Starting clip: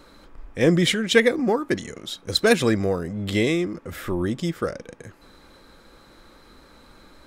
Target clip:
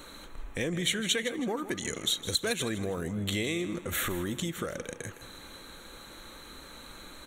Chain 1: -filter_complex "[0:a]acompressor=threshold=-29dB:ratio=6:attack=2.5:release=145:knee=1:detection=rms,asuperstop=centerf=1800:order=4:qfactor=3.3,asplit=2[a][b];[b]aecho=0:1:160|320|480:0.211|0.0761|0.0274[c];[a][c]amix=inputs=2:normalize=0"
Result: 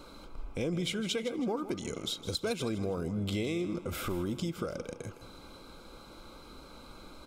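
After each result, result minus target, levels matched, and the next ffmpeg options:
2000 Hz band -5.0 dB; 4000 Hz band -3.5 dB
-filter_complex "[0:a]acompressor=threshold=-29dB:ratio=6:attack=2.5:release=145:knee=1:detection=rms,asuperstop=centerf=5000:order=4:qfactor=3.3,asplit=2[a][b];[b]aecho=0:1:160|320|480:0.211|0.0761|0.0274[c];[a][c]amix=inputs=2:normalize=0"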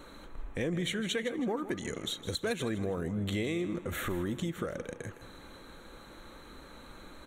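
4000 Hz band -4.5 dB
-filter_complex "[0:a]acompressor=threshold=-29dB:ratio=6:attack=2.5:release=145:knee=1:detection=rms,asuperstop=centerf=5000:order=4:qfactor=3.3,highshelf=f=2.4k:g=11,asplit=2[a][b];[b]aecho=0:1:160|320|480:0.211|0.0761|0.0274[c];[a][c]amix=inputs=2:normalize=0"

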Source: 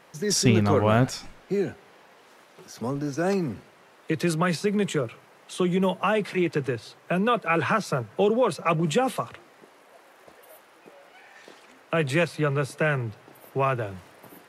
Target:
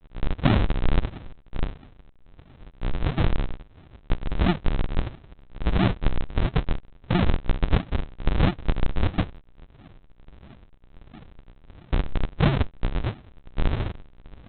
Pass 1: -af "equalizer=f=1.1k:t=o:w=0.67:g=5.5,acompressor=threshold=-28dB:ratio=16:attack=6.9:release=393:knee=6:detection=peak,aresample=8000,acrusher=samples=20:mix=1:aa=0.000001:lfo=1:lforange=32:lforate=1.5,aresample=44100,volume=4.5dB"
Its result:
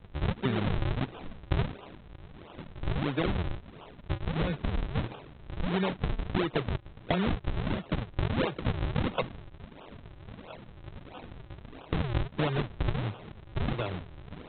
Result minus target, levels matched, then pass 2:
decimation with a swept rate: distortion -18 dB; compressor: peak gain reduction +10.5 dB
-af "equalizer=f=1.1k:t=o:w=0.67:g=5.5,acompressor=threshold=-17dB:ratio=16:attack=6.9:release=393:knee=6:detection=peak,aresample=8000,acrusher=samples=74:mix=1:aa=0.000001:lfo=1:lforange=118:lforate=1.5,aresample=44100,volume=4.5dB"

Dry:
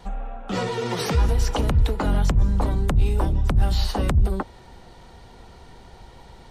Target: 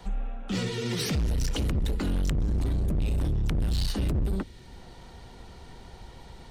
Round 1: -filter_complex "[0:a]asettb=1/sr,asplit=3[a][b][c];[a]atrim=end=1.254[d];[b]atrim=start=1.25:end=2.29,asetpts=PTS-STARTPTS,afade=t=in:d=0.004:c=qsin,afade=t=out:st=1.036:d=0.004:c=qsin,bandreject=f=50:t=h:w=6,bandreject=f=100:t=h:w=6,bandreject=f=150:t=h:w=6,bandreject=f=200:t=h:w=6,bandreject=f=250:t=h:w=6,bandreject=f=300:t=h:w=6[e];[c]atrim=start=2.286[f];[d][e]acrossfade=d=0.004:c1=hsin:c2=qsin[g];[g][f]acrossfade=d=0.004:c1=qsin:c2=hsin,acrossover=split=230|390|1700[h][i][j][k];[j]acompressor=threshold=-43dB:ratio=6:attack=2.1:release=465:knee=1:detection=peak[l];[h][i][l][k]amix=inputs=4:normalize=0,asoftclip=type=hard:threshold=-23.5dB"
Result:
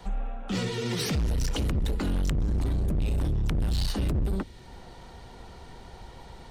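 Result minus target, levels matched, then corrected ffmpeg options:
compressor: peak gain reduction -6 dB
-filter_complex "[0:a]asettb=1/sr,asplit=3[a][b][c];[a]atrim=end=1.254[d];[b]atrim=start=1.25:end=2.29,asetpts=PTS-STARTPTS,afade=t=in:d=0.004:c=qsin,afade=t=out:st=1.036:d=0.004:c=qsin,bandreject=f=50:t=h:w=6,bandreject=f=100:t=h:w=6,bandreject=f=150:t=h:w=6,bandreject=f=200:t=h:w=6,bandreject=f=250:t=h:w=6,bandreject=f=300:t=h:w=6[e];[c]atrim=start=2.286[f];[d][e]acrossfade=d=0.004:c1=hsin:c2=qsin[g];[g][f]acrossfade=d=0.004:c1=qsin:c2=hsin,acrossover=split=230|390|1700[h][i][j][k];[j]acompressor=threshold=-50.5dB:ratio=6:attack=2.1:release=465:knee=1:detection=peak[l];[h][i][l][k]amix=inputs=4:normalize=0,asoftclip=type=hard:threshold=-23.5dB"

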